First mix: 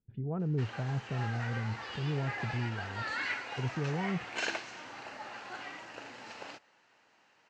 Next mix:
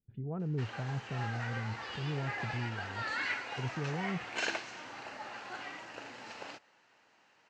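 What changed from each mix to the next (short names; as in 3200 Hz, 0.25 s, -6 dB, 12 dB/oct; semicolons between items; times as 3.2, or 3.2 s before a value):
speech -3.0 dB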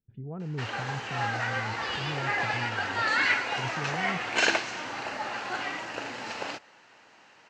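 background +10.5 dB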